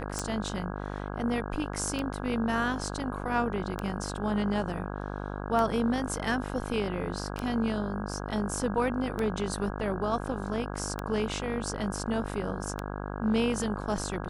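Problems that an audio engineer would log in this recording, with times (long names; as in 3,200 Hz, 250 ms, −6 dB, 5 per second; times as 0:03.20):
mains buzz 50 Hz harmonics 33 −36 dBFS
scratch tick 33 1/3 rpm −17 dBFS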